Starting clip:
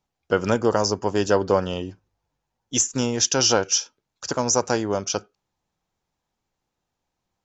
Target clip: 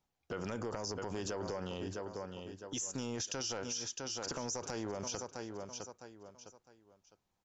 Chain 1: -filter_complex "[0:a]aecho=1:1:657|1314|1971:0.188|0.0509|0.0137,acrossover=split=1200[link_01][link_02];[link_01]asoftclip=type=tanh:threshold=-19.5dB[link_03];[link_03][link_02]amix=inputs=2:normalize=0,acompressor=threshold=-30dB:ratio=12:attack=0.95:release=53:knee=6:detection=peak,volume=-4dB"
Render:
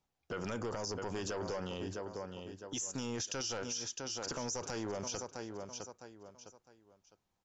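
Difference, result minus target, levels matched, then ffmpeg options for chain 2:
soft clipping: distortion +9 dB
-filter_complex "[0:a]aecho=1:1:657|1314|1971:0.188|0.0509|0.0137,acrossover=split=1200[link_01][link_02];[link_01]asoftclip=type=tanh:threshold=-10.5dB[link_03];[link_03][link_02]amix=inputs=2:normalize=0,acompressor=threshold=-30dB:ratio=12:attack=0.95:release=53:knee=6:detection=peak,volume=-4dB"

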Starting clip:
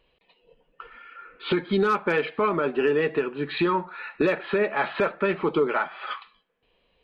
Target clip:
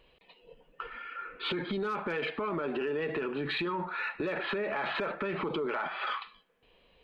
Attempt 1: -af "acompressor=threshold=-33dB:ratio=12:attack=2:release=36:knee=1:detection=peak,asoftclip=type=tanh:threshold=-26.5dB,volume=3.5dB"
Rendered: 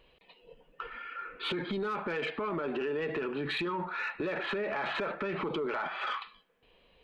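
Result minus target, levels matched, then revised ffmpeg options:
soft clipping: distortion +16 dB
-af "acompressor=threshold=-33dB:ratio=12:attack=2:release=36:knee=1:detection=peak,asoftclip=type=tanh:threshold=-18dB,volume=3.5dB"

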